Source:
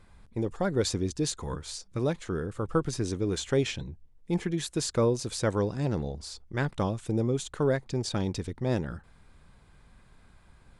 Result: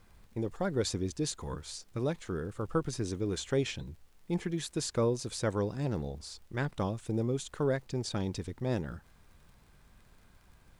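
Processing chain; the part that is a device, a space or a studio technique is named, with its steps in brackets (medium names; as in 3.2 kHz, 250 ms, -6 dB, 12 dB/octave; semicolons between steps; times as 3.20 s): vinyl LP (crackle 58 per s -48 dBFS; pink noise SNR 36 dB); trim -4 dB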